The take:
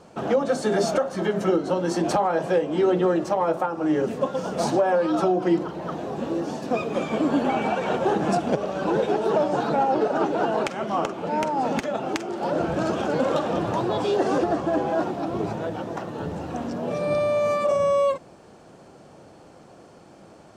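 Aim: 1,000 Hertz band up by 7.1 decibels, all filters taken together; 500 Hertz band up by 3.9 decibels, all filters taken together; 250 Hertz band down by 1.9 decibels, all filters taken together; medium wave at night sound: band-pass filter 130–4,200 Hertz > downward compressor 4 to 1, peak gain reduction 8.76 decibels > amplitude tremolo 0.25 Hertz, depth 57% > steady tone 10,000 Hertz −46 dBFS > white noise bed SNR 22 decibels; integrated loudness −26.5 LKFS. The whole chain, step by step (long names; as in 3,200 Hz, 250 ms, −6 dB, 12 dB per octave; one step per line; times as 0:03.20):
band-pass filter 130–4,200 Hz
parametric band 250 Hz −5 dB
parametric band 500 Hz +3.5 dB
parametric band 1,000 Hz +8.5 dB
downward compressor 4 to 1, threshold −21 dBFS
amplitude tremolo 0.25 Hz, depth 57%
steady tone 10,000 Hz −46 dBFS
white noise bed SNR 22 dB
level +1.5 dB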